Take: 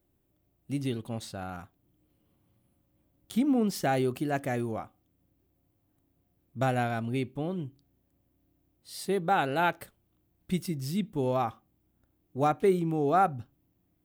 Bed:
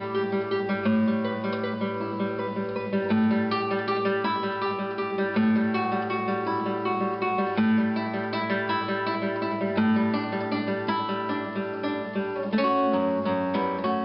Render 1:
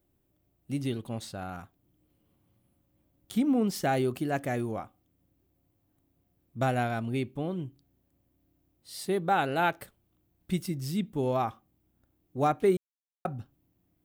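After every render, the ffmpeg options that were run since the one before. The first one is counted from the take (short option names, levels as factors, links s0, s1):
-filter_complex "[0:a]asplit=3[s0][s1][s2];[s0]atrim=end=12.77,asetpts=PTS-STARTPTS,afade=t=out:st=12.766:d=0.004:c=hsin[s3];[s1]atrim=start=12.77:end=13.25,asetpts=PTS-STARTPTS,volume=0[s4];[s2]atrim=start=13.25,asetpts=PTS-STARTPTS,afade=t=in:d=0.004:c=hsin[s5];[s3][s4][s5]concat=n=3:v=0:a=1"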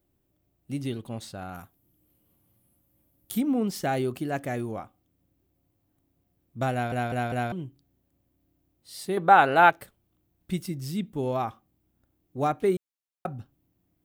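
-filter_complex "[0:a]asettb=1/sr,asplit=3[s0][s1][s2];[s0]atrim=end=1.544[s3];[s1]atrim=start=1.54:end=3.41,asetpts=PTS-STARTPTS,afade=t=in:d=0.004:c=qsin,afade=t=out:st=1.866:d=0.004:c=qsin,equalizer=f=13000:w=0.78:g=14.5[s4];[s2]atrim=start=3.406[s5];[s3][s4]acrossfade=d=0.004:c1=hsin:c2=qsin[s6];[s6][s5]acrossfade=d=0.004:c1=qsin:c2=hsin,asettb=1/sr,asplit=3[s7][s8][s9];[s7]atrim=end=9.174[s10];[s8]atrim=start=9.17:end=9.7,asetpts=PTS-STARTPTS,afade=t=in:d=0.004:c=qsin,afade=t=out:st=0.526:d=0.004:c=qsin,equalizer=f=1100:w=0.48:g=11[s11];[s9]atrim=start=9.696[s12];[s10][s11]acrossfade=d=0.004:c1=hsin:c2=qsin[s13];[s13][s12]acrossfade=d=0.004:c1=qsin:c2=hsin,asplit=5[s14][s15][s16][s17][s18];[s14]atrim=end=6.922[s19];[s15]atrim=start=6.718:end=6.922[s20];[s16]atrim=start=6.718:end=6.922[s21];[s17]atrim=start=6.718:end=6.922[s22];[s18]atrim=start=7.518[s23];[s19][s20]acrossfade=d=0.004:c1=hsin:c2=hsin[s24];[s24][s21]acrossfade=d=0.004:c1=hsin:c2=hsin[s25];[s25][s22]acrossfade=d=0.004:c1=hsin:c2=hsin[s26];[s26][s23]acrossfade=d=0.004:c1=hsin:c2=hsin"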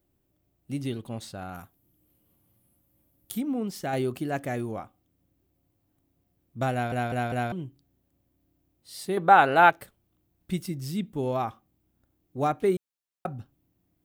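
-filter_complex "[0:a]asplit=3[s0][s1][s2];[s0]atrim=end=3.322[s3];[s1]atrim=start=3.318:end=3.932,asetpts=PTS-STARTPTS,volume=0.631[s4];[s2]atrim=start=3.928[s5];[s3][s4]acrossfade=d=0.004:c1=hsin:c2=hsin[s6];[s6][s5]acrossfade=d=0.004:c1=hsin:c2=hsin"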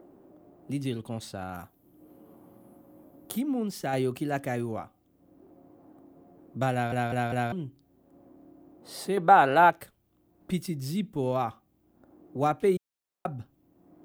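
-filter_complex "[0:a]acrossover=split=210|1200|5100[s0][s1][s2][s3];[s1]acompressor=mode=upward:threshold=0.02:ratio=2.5[s4];[s2]alimiter=limit=0.075:level=0:latency=1[s5];[s0][s4][s5][s3]amix=inputs=4:normalize=0"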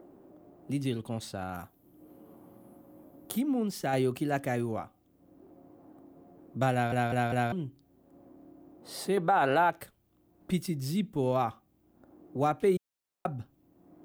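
-af "alimiter=limit=0.15:level=0:latency=1:release=66"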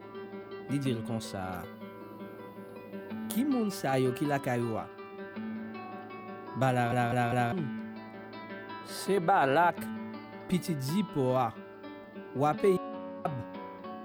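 -filter_complex "[1:a]volume=0.15[s0];[0:a][s0]amix=inputs=2:normalize=0"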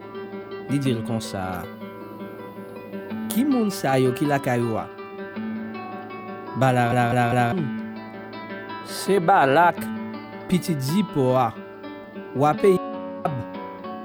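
-af "volume=2.66"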